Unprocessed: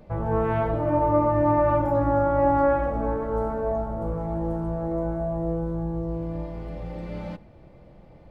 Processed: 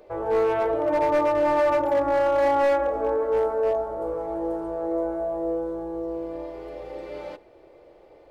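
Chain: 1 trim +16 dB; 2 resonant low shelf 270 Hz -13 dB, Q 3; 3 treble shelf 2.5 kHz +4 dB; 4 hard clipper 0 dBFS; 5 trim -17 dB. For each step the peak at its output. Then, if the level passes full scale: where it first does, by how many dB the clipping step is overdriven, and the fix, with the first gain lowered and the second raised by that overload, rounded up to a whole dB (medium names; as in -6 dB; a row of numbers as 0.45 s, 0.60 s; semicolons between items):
+6.0 dBFS, +7.5 dBFS, +8.0 dBFS, 0.0 dBFS, -17.0 dBFS; step 1, 8.0 dB; step 1 +8 dB, step 5 -9 dB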